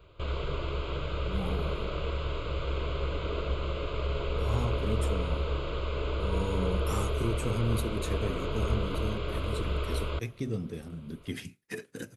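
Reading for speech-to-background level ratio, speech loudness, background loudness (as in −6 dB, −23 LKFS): −3.5 dB, −36.5 LKFS, −33.0 LKFS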